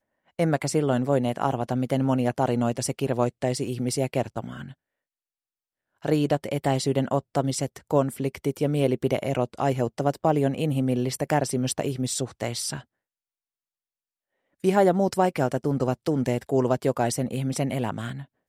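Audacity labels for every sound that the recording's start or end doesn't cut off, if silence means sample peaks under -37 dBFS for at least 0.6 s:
6.050000	12.810000	sound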